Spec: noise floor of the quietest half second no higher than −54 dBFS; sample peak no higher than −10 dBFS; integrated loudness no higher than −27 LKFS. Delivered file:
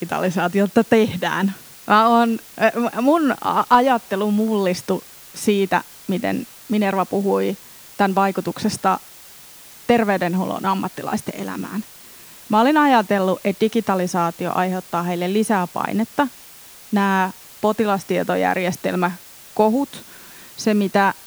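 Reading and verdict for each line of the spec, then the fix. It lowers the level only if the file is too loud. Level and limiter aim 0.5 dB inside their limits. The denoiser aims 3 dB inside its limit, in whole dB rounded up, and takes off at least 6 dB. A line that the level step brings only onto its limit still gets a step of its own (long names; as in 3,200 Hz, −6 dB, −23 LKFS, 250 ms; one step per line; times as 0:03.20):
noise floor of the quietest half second −43 dBFS: out of spec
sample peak −3.0 dBFS: out of spec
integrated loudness −20.0 LKFS: out of spec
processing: broadband denoise 7 dB, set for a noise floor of −43 dBFS
level −7.5 dB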